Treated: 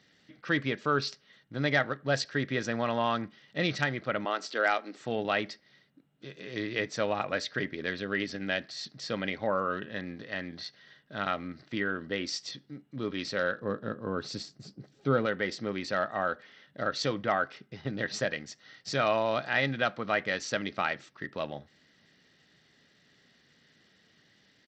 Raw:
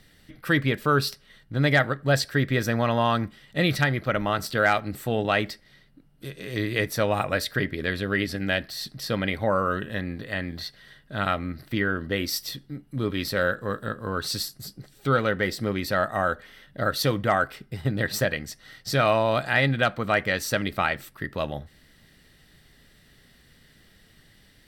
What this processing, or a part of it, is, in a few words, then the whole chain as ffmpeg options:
Bluetooth headset: -filter_complex "[0:a]asettb=1/sr,asplit=3[a][b][c];[a]atrim=end=4.254[d];[b]atrim=start=4.25:end=5,asetpts=PTS-STARTPTS,afade=t=in:d=0.004:c=qsin,afade=t=out:st=0.746:d=0.004:c=qsin,highpass=f=270:w=0.5412,highpass=f=270:w=1.3066[e];[c]atrim=start=4.996[f];[d][e]acrossfade=d=0.004:c1=hsin:c2=qsin[g];[g][f]acrossfade=d=0.004:c1=qsin:c2=hsin,asettb=1/sr,asplit=3[h][i][j];[h]atrim=end=13.604[k];[i]atrim=start=13.6:end=15.26,asetpts=PTS-STARTPTS,afade=t=in:d=0.004:c=qsin,afade=t=out:st=1.656:d=0.004:c=qsin,tiltshelf=f=900:g=6[l];[j]atrim=start=15.256[m];[k][l]acrossfade=d=0.004:c1=hsin:c2=qsin[n];[n][m]acrossfade=d=0.004:c1=qsin:c2=hsin,highpass=170,aresample=16000,aresample=44100,volume=-5.5dB" -ar 32000 -c:a sbc -b:a 64k

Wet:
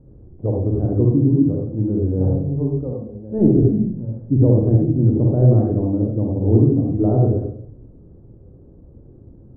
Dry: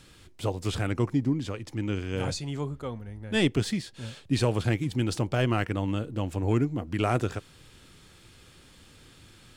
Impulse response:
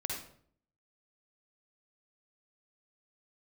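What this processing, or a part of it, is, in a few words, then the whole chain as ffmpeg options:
next room: -filter_complex "[0:a]lowpass=f=560:w=0.5412,lowpass=f=560:w=1.3066[a];[1:a]atrim=start_sample=2205[b];[a][b]afir=irnorm=-1:irlink=0,asettb=1/sr,asplit=3[c][d][e];[c]atrim=end=2.934[f];[d]atrim=start=2.93:end=3.39,asetpts=PTS-STARTPTS,afade=t=in:d=0.004:c=qsin,afade=t=out:st=0.456:d=0.004:c=qsin,lowshelf=f=170:g=-9.5[g];[e]atrim=start=3.386[h];[f][g]acrossfade=d=0.004:c1=hsin:c2=qsin[i];[i][h]acrossfade=d=0.004:c1=qsin:c2=hsin,volume=8.5dB"

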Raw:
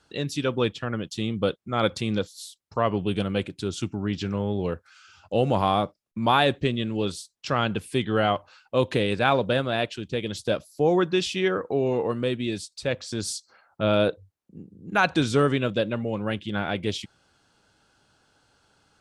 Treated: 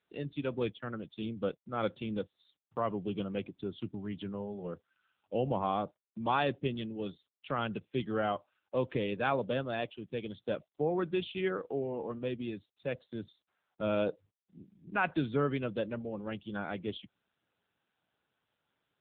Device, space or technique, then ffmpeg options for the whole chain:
mobile call with aggressive noise cancelling: -af "highpass=f=110:w=0.5412,highpass=f=110:w=1.3066,afftdn=nr=14:nf=-39,volume=-8.5dB" -ar 8000 -c:a libopencore_amrnb -b:a 7950

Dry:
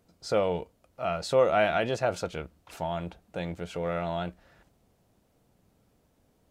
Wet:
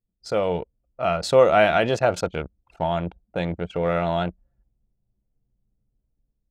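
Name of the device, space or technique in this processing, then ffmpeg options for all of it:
voice memo with heavy noise removal: -af "anlmdn=0.398,dynaudnorm=f=210:g=5:m=8dB"

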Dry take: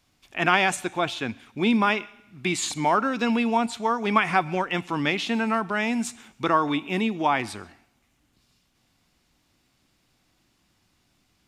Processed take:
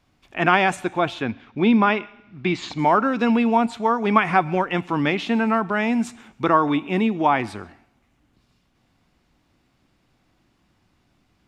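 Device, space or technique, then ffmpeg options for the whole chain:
through cloth: -filter_complex "[0:a]asettb=1/sr,asplit=3[a][b][c];[a]atrim=end=1.224[d];[b]atrim=start=1.22:end=2.79,asetpts=PTS-STARTPTS,afade=t=in:d=0.004:c=qsin,afade=t=out:st=1.566:d=0.004:c=qsin,lowpass=f=5.5k:w=0.5412,lowpass=f=5.5k:w=1.3066[e];[c]atrim=start=2.786[f];[d][e]acrossfade=d=0.004:c1=hsin:c2=qsin[g];[g][f]acrossfade=d=0.004:c1=qsin:c2=hsin,highshelf=f=3.2k:g=-13,volume=5dB"

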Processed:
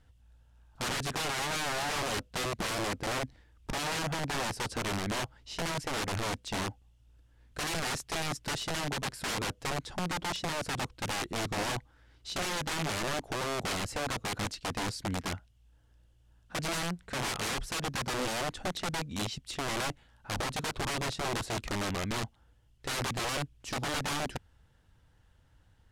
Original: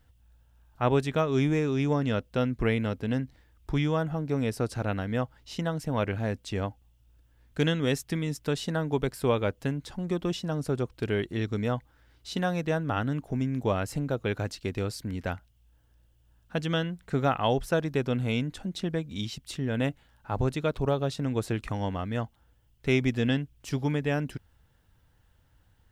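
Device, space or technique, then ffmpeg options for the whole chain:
overflowing digital effects unit: -af "aeval=exprs='(mod(23.7*val(0)+1,2)-1)/23.7':c=same,lowpass=9.8k"

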